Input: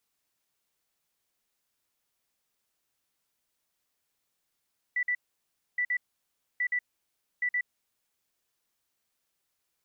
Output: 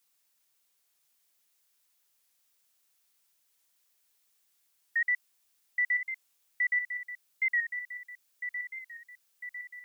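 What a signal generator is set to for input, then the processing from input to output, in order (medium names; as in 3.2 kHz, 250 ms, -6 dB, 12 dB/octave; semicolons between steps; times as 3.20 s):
beep pattern sine 1.97 kHz, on 0.07 s, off 0.05 s, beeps 2, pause 0.63 s, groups 4, -25 dBFS
tilt EQ +2 dB/octave; on a send: feedback echo behind a high-pass 1001 ms, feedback 56%, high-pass 1.7 kHz, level -6.5 dB; on the sum: warped record 45 rpm, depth 100 cents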